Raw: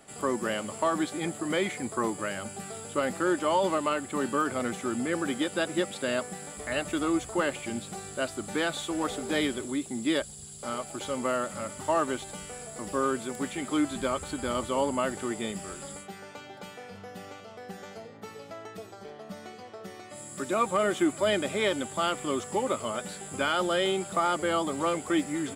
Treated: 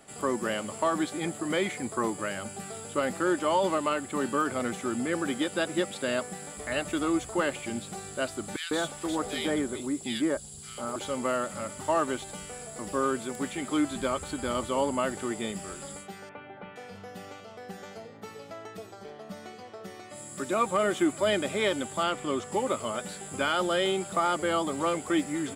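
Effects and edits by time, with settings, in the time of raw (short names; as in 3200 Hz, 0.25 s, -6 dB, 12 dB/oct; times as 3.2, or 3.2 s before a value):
8.56–10.96 bands offset in time highs, lows 0.15 s, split 1900 Hz
16.29–16.76 inverse Chebyshev low-pass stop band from 6400 Hz, stop band 50 dB
22.03–22.52 high shelf 8900 Hz -10.5 dB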